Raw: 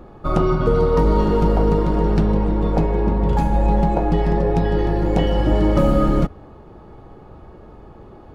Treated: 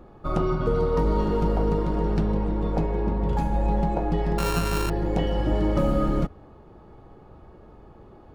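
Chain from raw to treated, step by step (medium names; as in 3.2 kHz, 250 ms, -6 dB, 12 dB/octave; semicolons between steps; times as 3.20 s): 4.38–4.90 s: sorted samples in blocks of 32 samples; trim -6.5 dB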